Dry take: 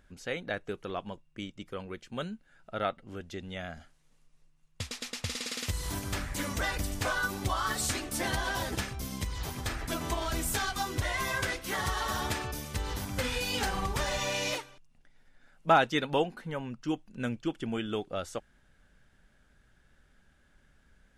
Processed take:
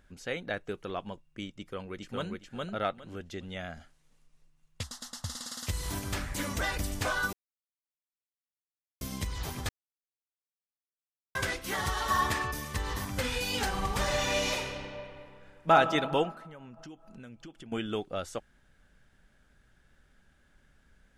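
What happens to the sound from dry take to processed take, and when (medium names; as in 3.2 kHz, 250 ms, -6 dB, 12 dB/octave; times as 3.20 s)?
1.54–2.33 s: echo throw 410 ms, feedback 20%, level -1.5 dB
4.83–5.67 s: static phaser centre 1 kHz, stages 4
7.33–9.01 s: mute
9.69–11.35 s: mute
12.10–13.11 s: small resonant body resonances 1.1/1.8 kHz, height 14 dB
13.72–15.72 s: reverb throw, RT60 2.5 s, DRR 2 dB
16.31–17.72 s: compression 8:1, threshold -44 dBFS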